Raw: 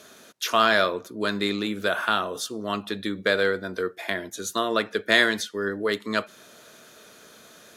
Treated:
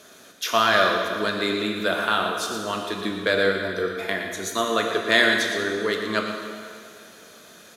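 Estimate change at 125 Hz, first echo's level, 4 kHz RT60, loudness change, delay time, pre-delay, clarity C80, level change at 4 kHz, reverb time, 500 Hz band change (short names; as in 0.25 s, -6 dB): +1.5 dB, -10.0 dB, 2.1 s, +2.0 dB, 0.116 s, 6 ms, 3.5 dB, +2.5 dB, 2.2 s, +2.0 dB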